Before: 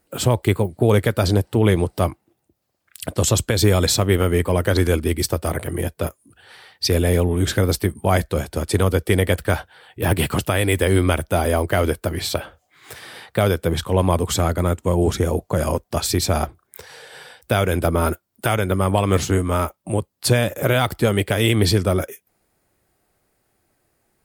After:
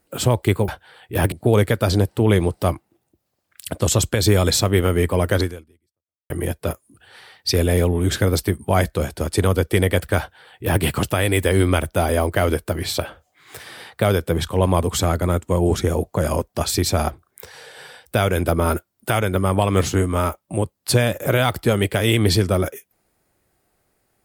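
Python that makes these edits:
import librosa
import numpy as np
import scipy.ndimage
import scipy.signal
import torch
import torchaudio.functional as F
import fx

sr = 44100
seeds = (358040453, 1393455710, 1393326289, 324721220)

y = fx.edit(x, sr, fx.fade_out_span(start_s=4.76, length_s=0.9, curve='exp'),
    fx.duplicate(start_s=9.55, length_s=0.64, to_s=0.68), tone=tone)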